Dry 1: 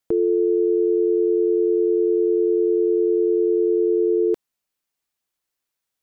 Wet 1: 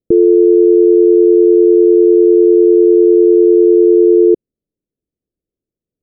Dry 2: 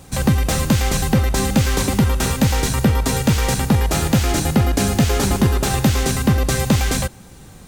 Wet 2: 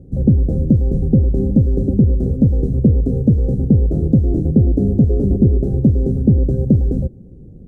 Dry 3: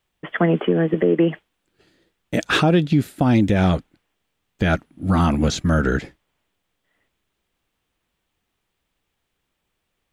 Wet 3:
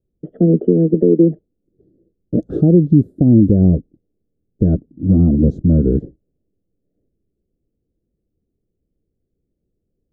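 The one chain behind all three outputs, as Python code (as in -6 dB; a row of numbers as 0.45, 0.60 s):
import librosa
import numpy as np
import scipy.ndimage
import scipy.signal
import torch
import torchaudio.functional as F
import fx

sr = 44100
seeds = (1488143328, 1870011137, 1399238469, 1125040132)

y = scipy.signal.sosfilt(scipy.signal.cheby2(4, 40, 920.0, 'lowpass', fs=sr, output='sos'), x)
y = y * 10.0 ** (-1.5 / 20.0) / np.max(np.abs(y))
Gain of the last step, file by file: +12.5, +4.0, +6.5 dB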